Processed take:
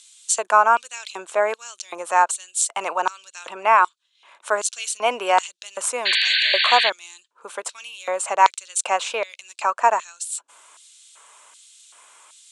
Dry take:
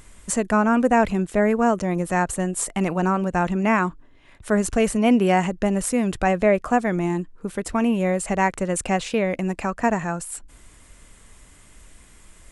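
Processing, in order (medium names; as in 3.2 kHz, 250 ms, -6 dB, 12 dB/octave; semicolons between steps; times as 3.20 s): 3.48–3.88 s: peaking EQ 6.6 kHz -13.5 dB 0.21 oct; LFO high-pass square 1.3 Hz 830–4000 Hz; cabinet simulation 390–9200 Hz, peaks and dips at 760 Hz -9 dB, 1.9 kHz -10 dB, 4.9 kHz -5 dB; 6.05–6.90 s: painted sound noise 1.5–4.6 kHz -25 dBFS; trim +5.5 dB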